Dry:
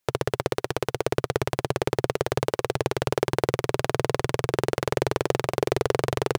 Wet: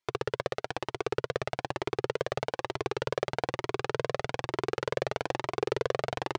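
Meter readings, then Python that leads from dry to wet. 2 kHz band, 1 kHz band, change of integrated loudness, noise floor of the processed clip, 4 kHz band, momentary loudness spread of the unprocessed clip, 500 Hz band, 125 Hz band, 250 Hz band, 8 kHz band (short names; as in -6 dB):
-4.5 dB, -5.0 dB, -6.5 dB, -82 dBFS, -5.5 dB, 2 LU, -6.5 dB, -10.5 dB, -8.5 dB, -11.5 dB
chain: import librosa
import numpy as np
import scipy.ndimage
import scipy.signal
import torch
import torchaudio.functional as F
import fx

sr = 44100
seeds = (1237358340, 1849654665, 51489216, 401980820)

y = scipy.signal.sosfilt(scipy.signal.butter(2, 5100.0, 'lowpass', fs=sr, output='sos'), x)
y = fx.low_shelf(y, sr, hz=170.0, db=-10.0)
y = fx.comb_cascade(y, sr, direction='rising', hz=1.1)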